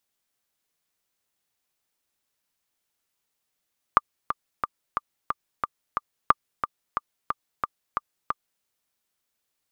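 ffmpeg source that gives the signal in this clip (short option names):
-f lavfi -i "aevalsrc='pow(10,(-2-9.5*gte(mod(t,7*60/180),60/180))/20)*sin(2*PI*1190*mod(t,60/180))*exp(-6.91*mod(t,60/180)/0.03)':d=4.66:s=44100"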